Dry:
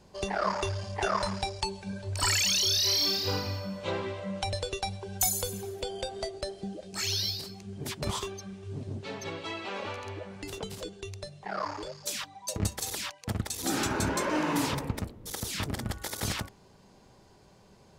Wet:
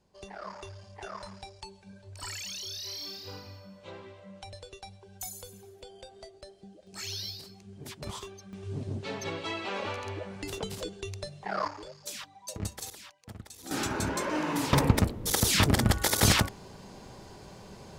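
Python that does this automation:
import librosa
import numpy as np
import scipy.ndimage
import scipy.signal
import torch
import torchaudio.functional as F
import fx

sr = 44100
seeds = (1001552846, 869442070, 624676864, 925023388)

y = fx.gain(x, sr, db=fx.steps((0.0, -13.0), (6.87, -7.0), (8.53, 2.0), (11.68, -5.5), (12.9, -13.0), (13.71, -2.0), (14.73, 10.0)))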